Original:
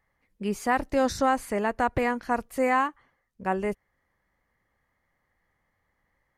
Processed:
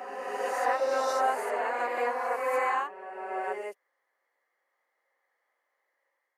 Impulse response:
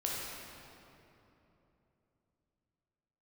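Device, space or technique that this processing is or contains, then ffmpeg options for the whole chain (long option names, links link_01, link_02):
ghost voice: -filter_complex "[0:a]areverse[link_01];[1:a]atrim=start_sample=2205[link_02];[link_01][link_02]afir=irnorm=-1:irlink=0,areverse,highpass=frequency=440:width=0.5412,highpass=frequency=440:width=1.3066,volume=-6.5dB"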